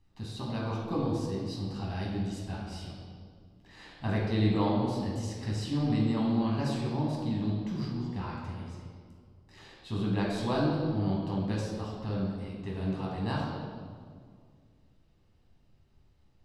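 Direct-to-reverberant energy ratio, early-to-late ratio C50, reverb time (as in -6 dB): -4.5 dB, 0.5 dB, 2.0 s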